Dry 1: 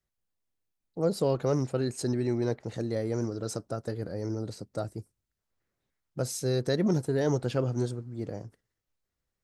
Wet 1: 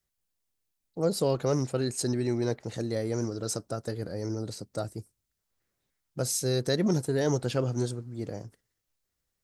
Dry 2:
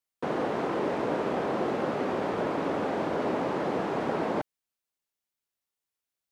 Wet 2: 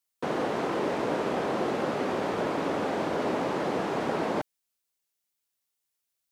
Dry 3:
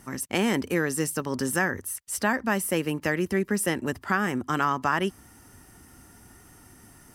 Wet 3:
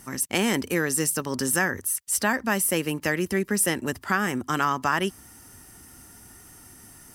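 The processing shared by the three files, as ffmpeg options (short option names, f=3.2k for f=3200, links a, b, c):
-af "highshelf=f=3.3k:g=7.5"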